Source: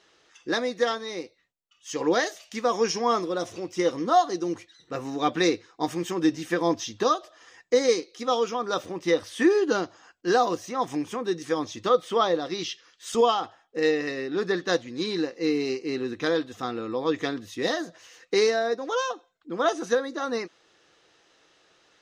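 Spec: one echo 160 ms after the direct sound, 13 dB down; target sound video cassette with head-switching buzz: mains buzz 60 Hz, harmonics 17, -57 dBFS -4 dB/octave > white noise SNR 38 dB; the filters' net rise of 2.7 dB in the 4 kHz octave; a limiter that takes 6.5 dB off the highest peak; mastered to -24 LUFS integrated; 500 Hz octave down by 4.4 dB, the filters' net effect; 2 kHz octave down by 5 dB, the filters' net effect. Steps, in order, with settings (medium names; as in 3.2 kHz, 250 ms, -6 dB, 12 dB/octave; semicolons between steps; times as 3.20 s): peaking EQ 500 Hz -5 dB; peaking EQ 2 kHz -7 dB; peaking EQ 4 kHz +5 dB; peak limiter -17.5 dBFS; delay 160 ms -13 dB; mains buzz 60 Hz, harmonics 17, -57 dBFS -4 dB/octave; white noise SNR 38 dB; trim +6.5 dB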